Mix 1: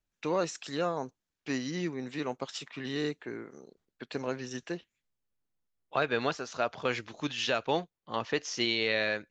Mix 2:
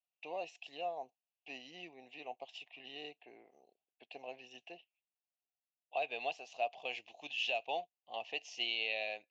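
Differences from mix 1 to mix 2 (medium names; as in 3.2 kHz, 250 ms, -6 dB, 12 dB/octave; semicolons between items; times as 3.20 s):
second voice: remove distance through air 110 m; master: add two resonant band-passes 1.4 kHz, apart 1.9 oct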